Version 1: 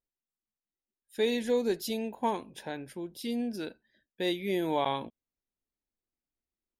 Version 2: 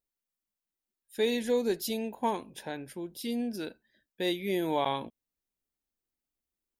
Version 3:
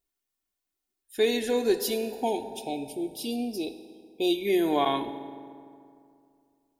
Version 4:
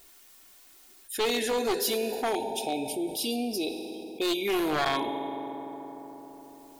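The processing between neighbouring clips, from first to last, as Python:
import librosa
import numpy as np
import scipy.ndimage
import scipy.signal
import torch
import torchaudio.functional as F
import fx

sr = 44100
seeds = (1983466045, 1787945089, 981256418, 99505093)

y1 = fx.high_shelf(x, sr, hz=10000.0, db=6.5)
y2 = fx.spec_erase(y1, sr, start_s=1.95, length_s=2.5, low_hz=930.0, high_hz=2200.0)
y2 = y2 + 0.63 * np.pad(y2, (int(2.8 * sr / 1000.0), 0))[:len(y2)]
y2 = fx.rev_fdn(y2, sr, rt60_s=2.4, lf_ratio=1.1, hf_ratio=0.55, size_ms=11.0, drr_db=8.0)
y2 = y2 * 10.0 ** (3.0 / 20.0)
y3 = np.minimum(y2, 2.0 * 10.0 ** (-22.0 / 20.0) - y2)
y3 = fx.low_shelf(y3, sr, hz=300.0, db=-9.5)
y3 = fx.env_flatten(y3, sr, amount_pct=50)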